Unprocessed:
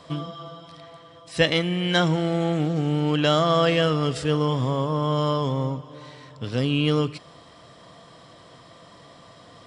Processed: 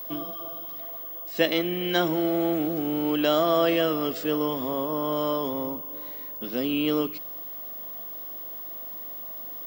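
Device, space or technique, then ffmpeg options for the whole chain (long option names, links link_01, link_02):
old television with a line whistle: -af "highpass=frequency=210:width=0.5412,highpass=frequency=210:width=1.3066,equalizer=frequency=220:width_type=q:width=4:gain=6,equalizer=frequency=340:width_type=q:width=4:gain=7,equalizer=frequency=650:width_type=q:width=4:gain=5,lowpass=frequency=7700:width=0.5412,lowpass=frequency=7700:width=1.3066,aeval=exprs='val(0)+0.0316*sin(2*PI*15625*n/s)':channel_layout=same,volume=-4.5dB"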